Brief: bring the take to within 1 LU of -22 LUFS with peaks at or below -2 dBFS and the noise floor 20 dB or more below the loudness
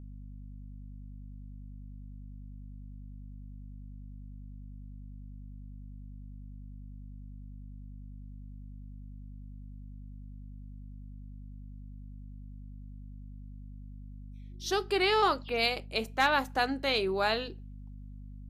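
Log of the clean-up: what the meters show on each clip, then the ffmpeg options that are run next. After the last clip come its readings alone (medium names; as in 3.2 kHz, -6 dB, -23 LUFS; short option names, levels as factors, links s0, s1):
hum 50 Hz; highest harmonic 250 Hz; hum level -43 dBFS; loudness -29.0 LUFS; peak level -13.0 dBFS; loudness target -22.0 LUFS
-> -af "bandreject=f=50:t=h:w=6,bandreject=f=100:t=h:w=6,bandreject=f=150:t=h:w=6,bandreject=f=200:t=h:w=6,bandreject=f=250:t=h:w=6"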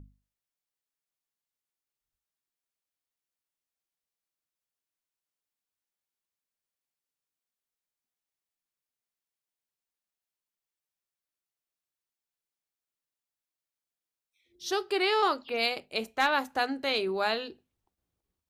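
hum not found; loudness -28.5 LUFS; peak level -13.0 dBFS; loudness target -22.0 LUFS
-> -af "volume=2.11"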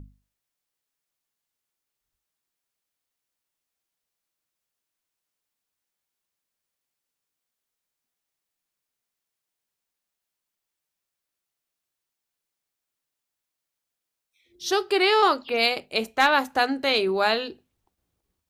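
loudness -22.5 LUFS; peak level -6.5 dBFS; noise floor -85 dBFS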